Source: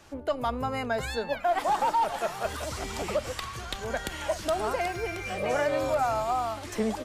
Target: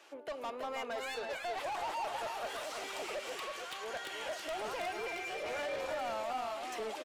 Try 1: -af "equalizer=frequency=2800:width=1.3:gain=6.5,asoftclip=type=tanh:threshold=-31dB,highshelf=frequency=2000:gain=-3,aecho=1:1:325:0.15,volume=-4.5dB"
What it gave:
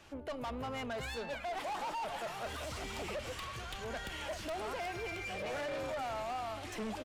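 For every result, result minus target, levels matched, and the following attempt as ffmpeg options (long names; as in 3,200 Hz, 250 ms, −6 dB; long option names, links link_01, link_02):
echo-to-direct −11.5 dB; 250 Hz band +7.0 dB
-af "equalizer=frequency=2800:width=1.3:gain=6.5,asoftclip=type=tanh:threshold=-31dB,highshelf=frequency=2000:gain=-3,aecho=1:1:325:0.562,volume=-4.5dB"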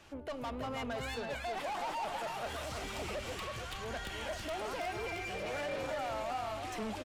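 250 Hz band +7.0 dB
-af "highpass=frequency=350:width=0.5412,highpass=frequency=350:width=1.3066,equalizer=frequency=2800:width=1.3:gain=6.5,asoftclip=type=tanh:threshold=-31dB,highshelf=frequency=2000:gain=-3,aecho=1:1:325:0.562,volume=-4.5dB"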